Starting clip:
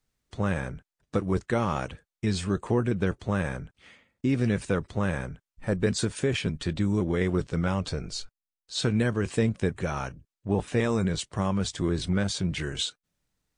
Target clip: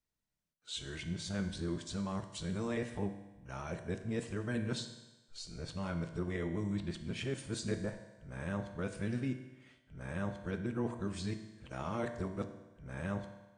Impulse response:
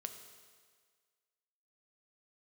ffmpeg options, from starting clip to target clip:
-filter_complex "[0:a]areverse[link_01];[1:a]atrim=start_sample=2205,asetrate=66150,aresample=44100[link_02];[link_01][link_02]afir=irnorm=-1:irlink=0,volume=-4.5dB"

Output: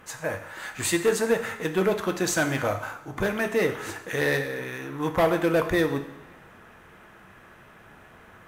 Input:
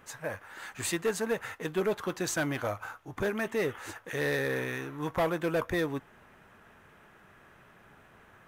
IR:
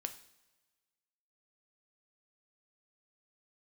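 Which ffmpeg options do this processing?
-filter_complex "[0:a]asettb=1/sr,asplit=3[link_01][link_02][link_03];[link_01]atrim=end=4.374[link_04];[link_02]atrim=start=4.37:end=4.95,asetpts=PTS-STARTPTS,afade=type=in:duration=0.004:curve=qsin,afade=type=out:start_time=0.576:duration=0.004:curve=qsin,acompressor=threshold=-36dB:ratio=5[link_05];[link_03]atrim=start=4.946[link_06];[link_04][link_05]acrossfade=duration=0.004:curve1=hsin:curve2=qsin[link_07];[link_07][link_06]acrossfade=duration=0.004:curve1=qsin:curve2=hsin[link_08];[1:a]atrim=start_sample=2205,asetrate=34839,aresample=44100[link_09];[link_08][link_09]afir=irnorm=-1:irlink=0,volume=7dB"

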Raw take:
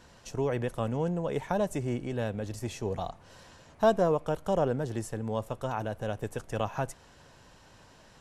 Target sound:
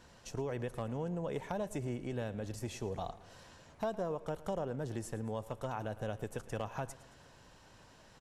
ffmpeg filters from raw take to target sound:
ffmpeg -i in.wav -filter_complex "[0:a]acompressor=threshold=-30dB:ratio=5,aeval=exprs='clip(val(0),-1,0.075)':channel_layout=same,asplit=2[link_01][link_02];[link_02]aecho=0:1:111|222|333|444:0.126|0.0617|0.0302|0.0148[link_03];[link_01][link_03]amix=inputs=2:normalize=0,volume=-3.5dB" out.wav

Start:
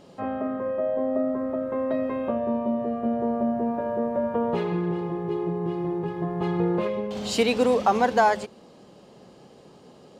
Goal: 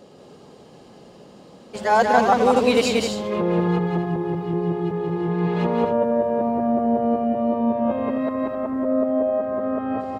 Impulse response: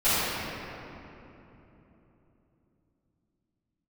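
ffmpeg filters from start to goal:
-af "areverse,aecho=1:1:183.7|262.4:0.708|0.398,volume=2dB"

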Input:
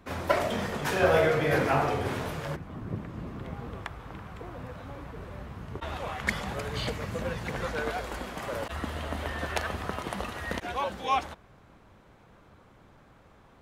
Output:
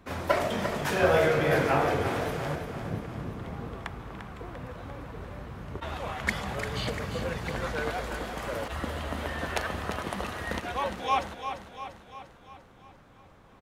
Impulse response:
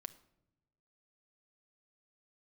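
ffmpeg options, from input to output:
-af "aecho=1:1:346|692|1038|1384|1730|2076|2422:0.355|0.199|0.111|0.0623|0.0349|0.0195|0.0109"

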